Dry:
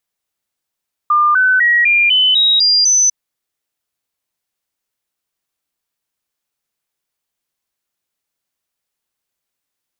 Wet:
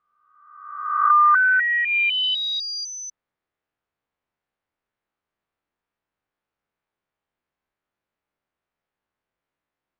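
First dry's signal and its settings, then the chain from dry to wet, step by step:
stepped sine 1.2 kHz up, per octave 3, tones 8, 0.25 s, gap 0.00 s -8.5 dBFS
reverse spectral sustain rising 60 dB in 1.04 s; low-pass 1.8 kHz 12 dB/octave; low-pass that closes with the level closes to 1.4 kHz, closed at -12.5 dBFS

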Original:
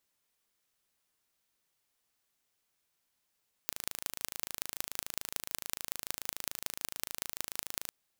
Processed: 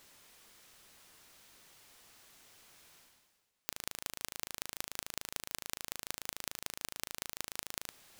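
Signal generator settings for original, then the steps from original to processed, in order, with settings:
pulse train 26.9 per s, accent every 5, -5 dBFS 4.21 s
treble shelf 9.3 kHz -6.5 dB; reverse; upward compressor, threshold -42 dBFS; reverse

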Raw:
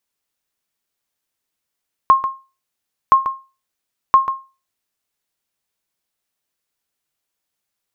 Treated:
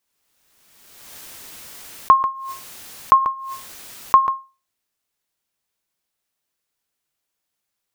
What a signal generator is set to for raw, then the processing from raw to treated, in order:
sonar ping 1.07 kHz, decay 0.30 s, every 1.02 s, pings 3, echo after 0.14 s, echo -11 dB -2.5 dBFS
swell ahead of each attack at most 33 dB/s

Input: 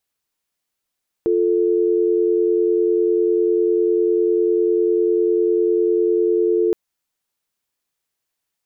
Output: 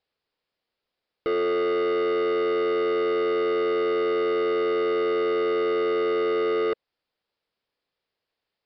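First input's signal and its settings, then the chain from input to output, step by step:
call progress tone dial tone, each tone -17 dBFS 5.47 s
peaking EQ 490 Hz +7.5 dB 0.81 oct; saturation -22.5 dBFS; resampled via 11.025 kHz

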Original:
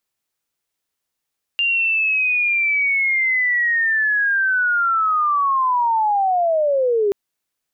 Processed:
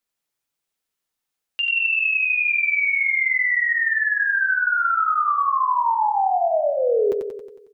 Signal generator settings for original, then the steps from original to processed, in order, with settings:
sweep linear 2.8 kHz -> 390 Hz -15.5 dBFS -> -14.5 dBFS 5.53 s
flange 1.2 Hz, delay 3.7 ms, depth 4.2 ms, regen -31%; on a send: feedback delay 91 ms, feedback 57%, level -5.5 dB

